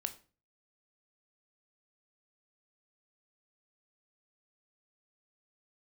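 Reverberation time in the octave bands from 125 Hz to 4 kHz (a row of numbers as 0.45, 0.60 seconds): 0.60, 0.45, 0.40, 0.35, 0.35, 0.30 seconds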